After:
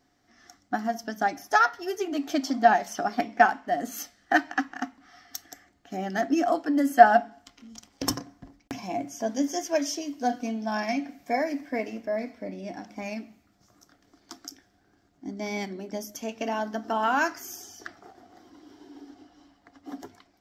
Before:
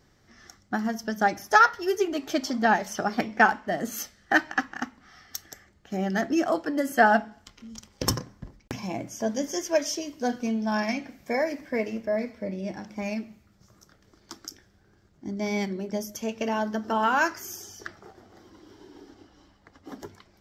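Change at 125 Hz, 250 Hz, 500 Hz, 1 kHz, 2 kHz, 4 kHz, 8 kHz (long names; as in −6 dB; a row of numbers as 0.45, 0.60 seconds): −6.5, −1.0, 0.0, +1.5, −2.5, −2.0, −2.0 decibels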